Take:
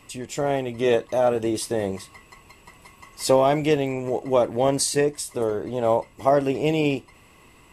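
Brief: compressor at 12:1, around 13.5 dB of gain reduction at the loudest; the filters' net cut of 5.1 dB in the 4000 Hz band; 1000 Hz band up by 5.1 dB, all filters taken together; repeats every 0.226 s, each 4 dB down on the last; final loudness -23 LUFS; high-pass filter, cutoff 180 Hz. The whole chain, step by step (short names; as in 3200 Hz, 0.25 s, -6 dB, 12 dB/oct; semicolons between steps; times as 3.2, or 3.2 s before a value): HPF 180 Hz; bell 1000 Hz +7.5 dB; bell 4000 Hz -7.5 dB; compressor 12:1, threshold -24 dBFS; feedback echo 0.226 s, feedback 63%, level -4 dB; gain +5.5 dB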